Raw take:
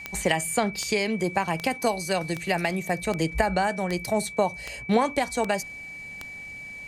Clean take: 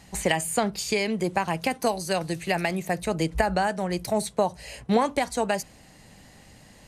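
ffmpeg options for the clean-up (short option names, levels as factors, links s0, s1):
-af "adeclick=t=4,bandreject=f=2300:w=30"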